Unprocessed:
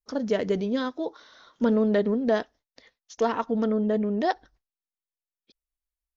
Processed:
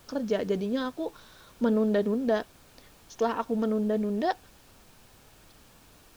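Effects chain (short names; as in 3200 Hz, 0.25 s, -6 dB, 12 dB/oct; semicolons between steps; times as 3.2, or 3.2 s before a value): added noise pink -53 dBFS; notch 2000 Hz, Q 12; gain -2.5 dB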